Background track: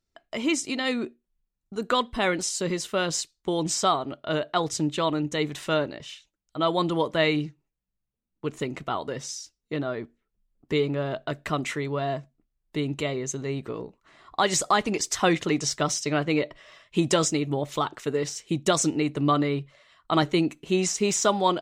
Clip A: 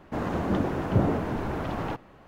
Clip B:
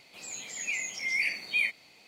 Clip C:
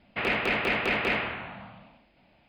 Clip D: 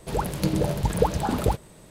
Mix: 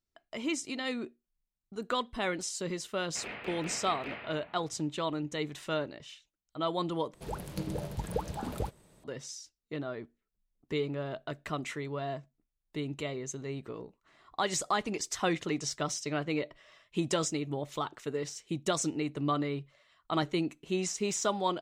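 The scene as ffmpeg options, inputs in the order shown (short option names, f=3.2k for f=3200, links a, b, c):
-filter_complex "[0:a]volume=-8dB[a];[3:a]asplit=2[b][c];[c]adelay=35,volume=-10.5dB[d];[b][d]amix=inputs=2:normalize=0[e];[a]asplit=2[f][g];[f]atrim=end=7.144[h];[4:a]atrim=end=1.9,asetpts=PTS-STARTPTS,volume=-12dB[i];[g]atrim=start=9.036[j];[e]atrim=end=2.48,asetpts=PTS-STARTPTS,volume=-15.5dB,afade=t=in:d=0.004:c=hsin,afade=t=out:st=2.476:d=0.004:c=hsin,adelay=2990[k];[h][i]acrossfade=d=0.004:c1=hsin:c2=hsin[l];[l][j]acrossfade=d=0.004:c1=hsin:c2=hsin[m];[m][k]amix=inputs=2:normalize=0"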